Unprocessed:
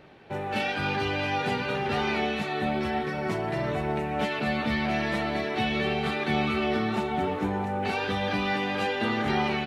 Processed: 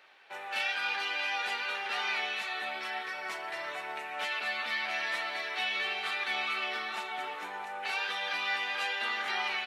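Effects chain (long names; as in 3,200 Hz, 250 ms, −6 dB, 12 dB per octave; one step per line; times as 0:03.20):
high-pass filter 1,200 Hz 12 dB per octave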